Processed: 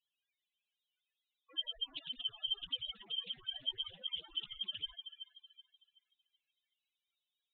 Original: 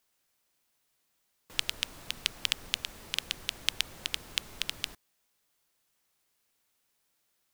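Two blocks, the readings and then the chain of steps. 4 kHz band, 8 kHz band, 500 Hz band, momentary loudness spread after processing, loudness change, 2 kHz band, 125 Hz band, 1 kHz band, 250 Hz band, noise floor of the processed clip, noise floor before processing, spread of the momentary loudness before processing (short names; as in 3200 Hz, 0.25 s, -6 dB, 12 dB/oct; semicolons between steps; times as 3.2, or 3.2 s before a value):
-3.5 dB, under -40 dB, -10.5 dB, 11 LU, -6.0 dB, -21.0 dB, under -10 dB, -14.5 dB, -11.5 dB, under -85 dBFS, -76 dBFS, 5 LU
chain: steep low-pass 4100 Hz 72 dB/oct; tilt +2.5 dB/oct; in parallel at -7 dB: companded quantiser 4-bit; on the sum: loudest bins only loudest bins 2; on a send: thin delay 0.377 s, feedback 31%, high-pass 1700 Hz, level -8 dB; on the sum: Doppler distortion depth 0.23 ms; gain +4.5 dB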